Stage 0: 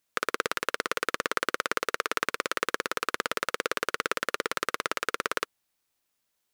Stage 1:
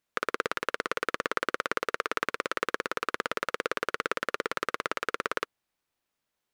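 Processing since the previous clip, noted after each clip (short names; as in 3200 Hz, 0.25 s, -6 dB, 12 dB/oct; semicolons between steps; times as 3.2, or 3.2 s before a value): high shelf 4100 Hz -10 dB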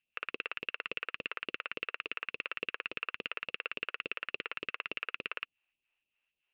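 phaser stages 2, 3.5 Hz, lowest notch 110–1500 Hz; ladder low-pass 2800 Hz, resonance 85%; limiter -25 dBFS, peak gain reduction 10 dB; gain +6 dB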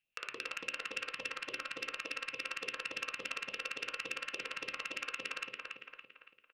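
feedback echo 0.282 s, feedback 43%, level -5 dB; reverb RT60 0.35 s, pre-delay 6 ms, DRR 8 dB; core saturation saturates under 3900 Hz; gain -1 dB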